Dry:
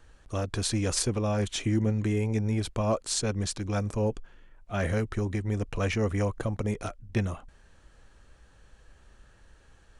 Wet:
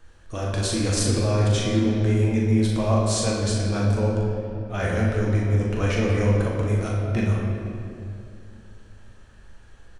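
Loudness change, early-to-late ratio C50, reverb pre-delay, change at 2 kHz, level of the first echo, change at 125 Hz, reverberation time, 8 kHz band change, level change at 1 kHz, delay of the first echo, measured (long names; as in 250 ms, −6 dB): +6.5 dB, −0.5 dB, 6 ms, +5.5 dB, −5.5 dB, +8.0 dB, 2.5 s, +3.5 dB, +5.0 dB, 40 ms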